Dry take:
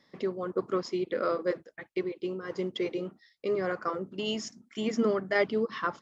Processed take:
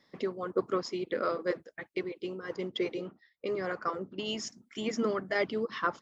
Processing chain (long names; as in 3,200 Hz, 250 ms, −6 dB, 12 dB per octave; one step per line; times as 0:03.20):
harmonic and percussive parts rebalanced harmonic −6 dB
0:02.56–0:04.35: low-pass that shuts in the quiet parts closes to 1,600 Hz, open at −30 dBFS
level +1.5 dB